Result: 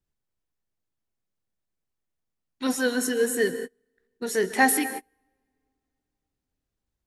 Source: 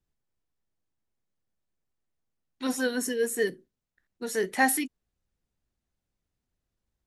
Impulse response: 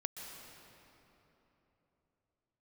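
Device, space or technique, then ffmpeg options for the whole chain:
keyed gated reverb: -filter_complex "[0:a]asplit=3[s0][s1][s2];[1:a]atrim=start_sample=2205[s3];[s1][s3]afir=irnorm=-1:irlink=0[s4];[s2]apad=whole_len=311349[s5];[s4][s5]sidechaingate=range=0.0158:threshold=0.00447:ratio=16:detection=peak,volume=1[s6];[s0][s6]amix=inputs=2:normalize=0,volume=0.841"

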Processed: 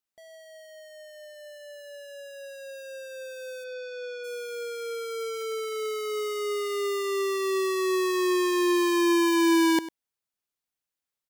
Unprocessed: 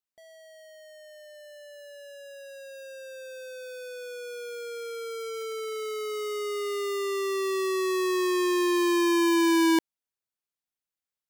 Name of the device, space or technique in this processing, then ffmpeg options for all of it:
parallel distortion: -filter_complex "[0:a]asplit=2[s0][s1];[s1]asoftclip=type=hard:threshold=0.0178,volume=0.299[s2];[s0][s2]amix=inputs=2:normalize=0,asplit=3[s3][s4][s5];[s3]afade=t=out:st=3.63:d=0.02[s6];[s4]lowpass=f=5400:w=0.5412,lowpass=f=5400:w=1.3066,afade=t=in:st=3.63:d=0.02,afade=t=out:st=4.23:d=0.02[s7];[s5]afade=t=in:st=4.23:d=0.02[s8];[s6][s7][s8]amix=inputs=3:normalize=0,aecho=1:1:99:0.158"

